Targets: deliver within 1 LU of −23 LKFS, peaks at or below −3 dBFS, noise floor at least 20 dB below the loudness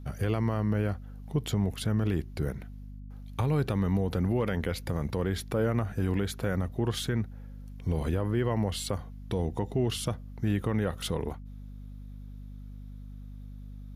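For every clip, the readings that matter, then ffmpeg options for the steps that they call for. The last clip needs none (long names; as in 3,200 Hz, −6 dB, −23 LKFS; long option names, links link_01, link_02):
mains hum 50 Hz; hum harmonics up to 250 Hz; level of the hum −41 dBFS; integrated loudness −30.5 LKFS; sample peak −16.5 dBFS; target loudness −23.0 LKFS
→ -af "bandreject=frequency=50:width_type=h:width=6,bandreject=frequency=100:width_type=h:width=6,bandreject=frequency=150:width_type=h:width=6,bandreject=frequency=200:width_type=h:width=6,bandreject=frequency=250:width_type=h:width=6"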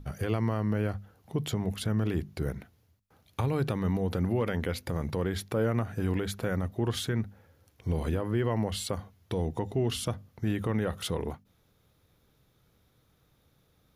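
mains hum none found; integrated loudness −31.5 LKFS; sample peak −16.5 dBFS; target loudness −23.0 LKFS
→ -af "volume=8.5dB"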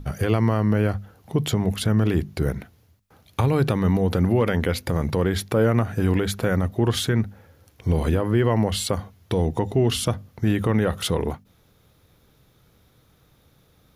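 integrated loudness −23.0 LKFS; sample peak −8.0 dBFS; background noise floor −60 dBFS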